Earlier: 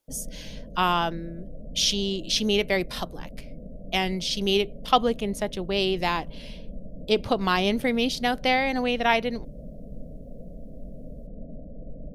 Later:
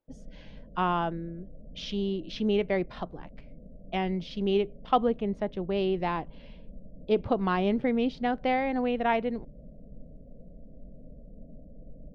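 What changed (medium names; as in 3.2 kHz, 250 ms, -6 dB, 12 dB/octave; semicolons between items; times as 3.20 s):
background -7.0 dB; master: add tape spacing loss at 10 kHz 43 dB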